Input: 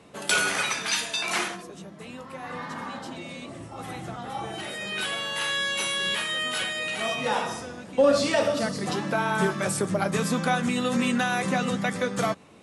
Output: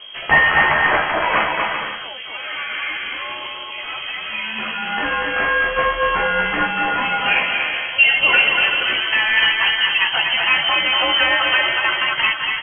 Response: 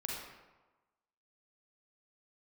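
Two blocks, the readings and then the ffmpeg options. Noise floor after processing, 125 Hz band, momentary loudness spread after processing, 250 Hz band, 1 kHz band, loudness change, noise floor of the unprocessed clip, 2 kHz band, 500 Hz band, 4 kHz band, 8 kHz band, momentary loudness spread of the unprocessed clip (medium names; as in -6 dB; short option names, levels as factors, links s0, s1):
-31 dBFS, -4.0 dB, 13 LU, -5.0 dB, +9.5 dB, +10.0 dB, -44 dBFS, +13.5 dB, +1.0 dB, +11.5 dB, under -40 dB, 15 LU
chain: -filter_complex "[0:a]tiltshelf=f=1100:g=-5.5,asplit=2[s0][s1];[s1]adelay=13,volume=0.562[s2];[s0][s2]amix=inputs=2:normalize=0,aecho=1:1:240|384|470.4|522.2|553.3:0.631|0.398|0.251|0.158|0.1,aeval=exprs='val(0)+0.00631*(sin(2*PI*50*n/s)+sin(2*PI*2*50*n/s)/2+sin(2*PI*3*50*n/s)/3+sin(2*PI*4*50*n/s)/4+sin(2*PI*5*50*n/s)/5)':c=same,lowpass=f=2800:t=q:w=0.5098,lowpass=f=2800:t=q:w=0.6013,lowpass=f=2800:t=q:w=0.9,lowpass=f=2800:t=q:w=2.563,afreqshift=-3300,volume=2.37"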